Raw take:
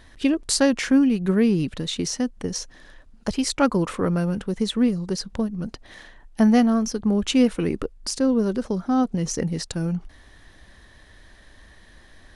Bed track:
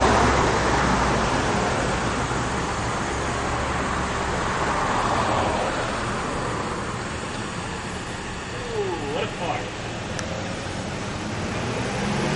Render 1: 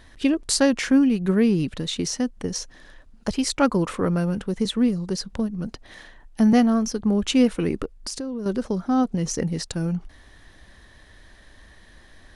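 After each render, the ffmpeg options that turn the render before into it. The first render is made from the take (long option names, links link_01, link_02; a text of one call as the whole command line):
ffmpeg -i in.wav -filter_complex "[0:a]asettb=1/sr,asplit=3[link_01][link_02][link_03];[link_01]atrim=end=4.654[link_04];[link_02]atrim=start=4.65:end=6.53,asetpts=PTS-STARTPTS,afade=type=in:duration=0.004:curve=qsin,afade=type=out:start_time=1.876:duration=0.004:curve=qsin,acrossover=split=410|3000[link_05][link_06][link_07];[link_06]acompressor=threshold=-30dB:ratio=6:attack=3.2:release=140:knee=2.83:detection=peak[link_08];[link_05][link_08][link_07]amix=inputs=3:normalize=0[link_09];[link_03]atrim=start=6.526[link_10];[link_04][link_09]acrossfade=duration=0.004:curve1=hsin:curve2=qsin[link_11];[link_11][link_10]acrossfade=duration=0.004:curve1=qsin:curve2=hsin,asettb=1/sr,asplit=3[link_12][link_13][link_14];[link_12]atrim=end=7.854[link_15];[link_13]atrim=start=7.85:end=8.46,asetpts=PTS-STARTPTS,afade=type=in:duration=0.004:curve=qsin,afade=type=out:start_time=0.606:duration=0.004:curve=qsin,acompressor=threshold=-27dB:ratio=6:attack=3.2:release=140:knee=1:detection=peak[link_16];[link_14]atrim=start=8.456[link_17];[link_15][link_16]acrossfade=duration=0.004:curve1=hsin:curve2=qsin[link_18];[link_18][link_17]acrossfade=duration=0.004:curve1=qsin:curve2=hsin" out.wav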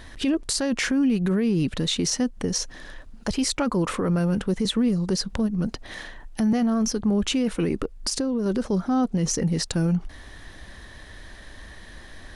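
ffmpeg -i in.wav -filter_complex "[0:a]asplit=2[link_01][link_02];[link_02]acompressor=threshold=-30dB:ratio=6,volume=1.5dB[link_03];[link_01][link_03]amix=inputs=2:normalize=0,alimiter=limit=-15.5dB:level=0:latency=1:release=12" out.wav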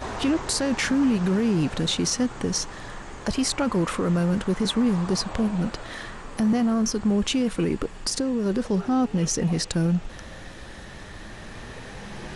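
ffmpeg -i in.wav -i bed.wav -filter_complex "[1:a]volume=-15dB[link_01];[0:a][link_01]amix=inputs=2:normalize=0" out.wav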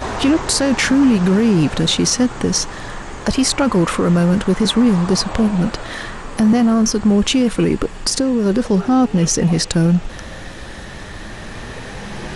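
ffmpeg -i in.wav -af "volume=8.5dB" out.wav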